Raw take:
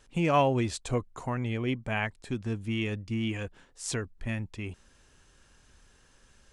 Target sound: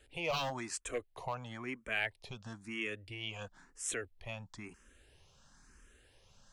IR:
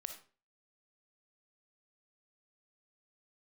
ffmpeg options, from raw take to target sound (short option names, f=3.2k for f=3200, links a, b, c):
-filter_complex "[0:a]acrossover=split=460|1500[a][b][c];[a]acompressor=threshold=-45dB:ratio=6[d];[b]aeval=exprs='0.0398*(abs(mod(val(0)/0.0398+3,4)-2)-1)':c=same[e];[d][e][c]amix=inputs=3:normalize=0,asplit=2[f][g];[g]afreqshift=1[h];[f][h]amix=inputs=2:normalize=1"